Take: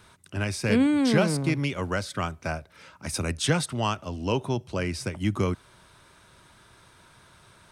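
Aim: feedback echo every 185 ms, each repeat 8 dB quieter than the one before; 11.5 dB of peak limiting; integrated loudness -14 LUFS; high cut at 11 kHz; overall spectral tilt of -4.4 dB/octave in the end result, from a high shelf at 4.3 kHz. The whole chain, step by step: low-pass 11 kHz; treble shelf 4.3 kHz +8 dB; peak limiter -20 dBFS; feedback delay 185 ms, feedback 40%, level -8 dB; trim +16 dB

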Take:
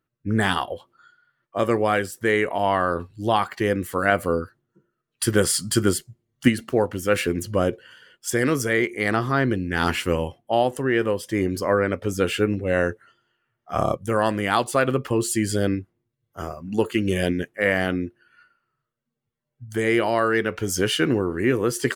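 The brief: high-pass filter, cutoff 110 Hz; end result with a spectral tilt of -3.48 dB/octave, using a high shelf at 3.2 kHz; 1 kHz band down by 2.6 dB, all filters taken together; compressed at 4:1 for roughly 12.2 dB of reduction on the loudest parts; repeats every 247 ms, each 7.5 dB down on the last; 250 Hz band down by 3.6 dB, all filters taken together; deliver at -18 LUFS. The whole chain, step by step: high-pass 110 Hz; peaking EQ 250 Hz -4.5 dB; peaking EQ 1 kHz -4 dB; treble shelf 3.2 kHz +5.5 dB; compression 4:1, threshold -30 dBFS; feedback delay 247 ms, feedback 42%, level -7.5 dB; trim +14.5 dB

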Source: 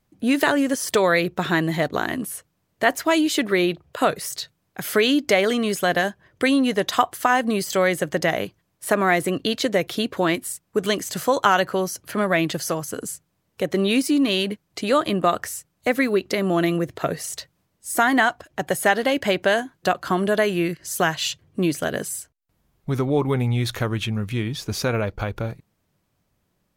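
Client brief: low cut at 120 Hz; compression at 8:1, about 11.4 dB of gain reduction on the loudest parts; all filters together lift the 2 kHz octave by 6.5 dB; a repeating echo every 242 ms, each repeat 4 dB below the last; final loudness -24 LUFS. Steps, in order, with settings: high-pass 120 Hz; peaking EQ 2 kHz +8 dB; compression 8:1, threshold -21 dBFS; feedback delay 242 ms, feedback 63%, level -4 dB; trim +0.5 dB

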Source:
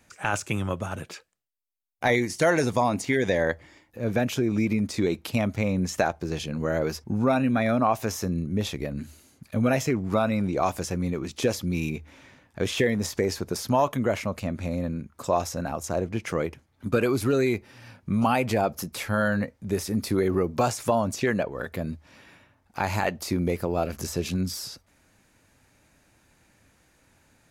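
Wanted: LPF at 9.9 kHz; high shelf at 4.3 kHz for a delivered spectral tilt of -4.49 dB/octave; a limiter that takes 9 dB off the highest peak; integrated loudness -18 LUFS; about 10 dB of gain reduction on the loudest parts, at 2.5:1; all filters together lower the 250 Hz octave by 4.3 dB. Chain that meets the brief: low-pass 9.9 kHz; peaking EQ 250 Hz -5.5 dB; treble shelf 4.3 kHz +3 dB; compression 2.5:1, threshold -34 dBFS; trim +19 dB; peak limiter -6 dBFS

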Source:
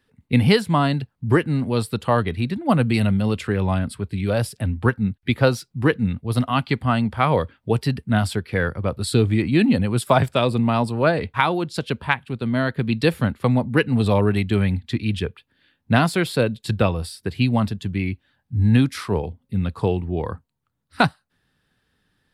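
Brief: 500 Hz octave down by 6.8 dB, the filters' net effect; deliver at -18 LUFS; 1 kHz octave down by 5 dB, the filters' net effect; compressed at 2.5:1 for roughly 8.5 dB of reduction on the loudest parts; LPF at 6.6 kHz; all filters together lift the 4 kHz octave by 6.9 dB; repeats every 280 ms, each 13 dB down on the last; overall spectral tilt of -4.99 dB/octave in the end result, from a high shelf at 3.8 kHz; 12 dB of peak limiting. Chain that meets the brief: low-pass 6.6 kHz; peaking EQ 500 Hz -7.5 dB; peaking EQ 1 kHz -5 dB; treble shelf 3.8 kHz +5.5 dB; peaking EQ 4 kHz +6 dB; compression 2.5:1, threshold -26 dBFS; peak limiter -19.5 dBFS; feedback delay 280 ms, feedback 22%, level -13 dB; trim +12 dB

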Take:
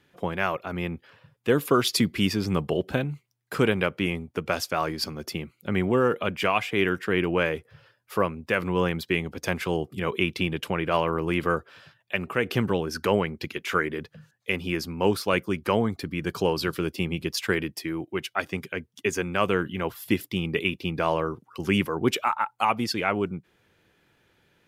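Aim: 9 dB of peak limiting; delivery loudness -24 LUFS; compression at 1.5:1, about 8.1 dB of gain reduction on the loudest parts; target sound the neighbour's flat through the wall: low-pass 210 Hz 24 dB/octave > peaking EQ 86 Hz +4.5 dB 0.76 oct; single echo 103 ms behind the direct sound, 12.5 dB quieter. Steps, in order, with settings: compression 1.5:1, threshold -40 dBFS; peak limiter -22.5 dBFS; low-pass 210 Hz 24 dB/octave; peaking EQ 86 Hz +4.5 dB 0.76 oct; delay 103 ms -12.5 dB; trim +18.5 dB

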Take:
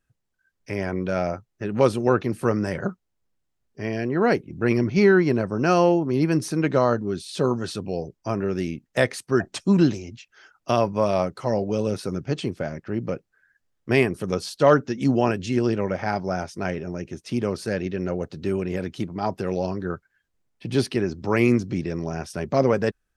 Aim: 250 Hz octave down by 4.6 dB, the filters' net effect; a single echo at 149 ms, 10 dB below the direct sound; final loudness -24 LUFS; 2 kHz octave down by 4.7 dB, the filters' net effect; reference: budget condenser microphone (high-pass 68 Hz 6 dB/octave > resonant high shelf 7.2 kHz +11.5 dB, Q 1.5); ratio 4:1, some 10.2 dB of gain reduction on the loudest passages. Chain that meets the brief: peaking EQ 250 Hz -6 dB; peaking EQ 2 kHz -5.5 dB; compression 4:1, threshold -26 dBFS; high-pass 68 Hz 6 dB/octave; resonant high shelf 7.2 kHz +11.5 dB, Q 1.5; delay 149 ms -10 dB; trim +7.5 dB

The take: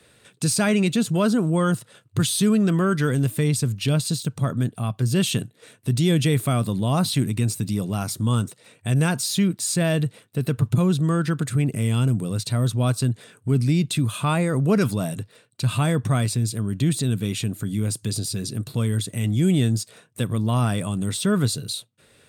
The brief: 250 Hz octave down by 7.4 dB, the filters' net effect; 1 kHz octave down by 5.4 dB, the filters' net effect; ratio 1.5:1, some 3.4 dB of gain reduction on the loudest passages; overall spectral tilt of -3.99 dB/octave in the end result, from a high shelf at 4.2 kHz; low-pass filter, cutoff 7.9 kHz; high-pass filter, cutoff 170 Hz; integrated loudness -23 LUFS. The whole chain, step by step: high-pass 170 Hz; low-pass 7.9 kHz; peaking EQ 250 Hz -8 dB; peaking EQ 1 kHz -7.5 dB; treble shelf 4.2 kHz +4.5 dB; compression 1.5:1, threshold -30 dBFS; trim +7.5 dB

